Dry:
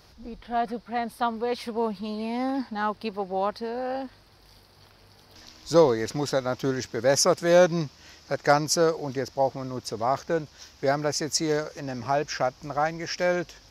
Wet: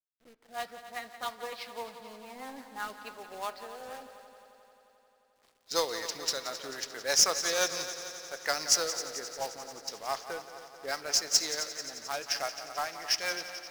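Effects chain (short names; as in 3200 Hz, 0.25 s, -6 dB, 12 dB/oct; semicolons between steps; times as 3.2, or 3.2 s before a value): weighting filter ITU-R 468; low-pass opened by the level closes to 520 Hz, open at -19 dBFS; low shelf 300 Hz -6 dB; companded quantiser 4-bit; rotary speaker horn 6 Hz; multi-head echo 88 ms, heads second and third, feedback 66%, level -13 dB; on a send at -16.5 dB: reverb RT60 0.75 s, pre-delay 5 ms; on the sum: gain -5.5 dB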